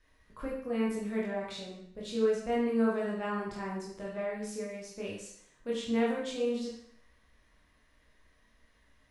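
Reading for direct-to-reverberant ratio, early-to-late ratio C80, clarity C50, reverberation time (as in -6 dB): -5.0 dB, 6.0 dB, 2.5 dB, 0.65 s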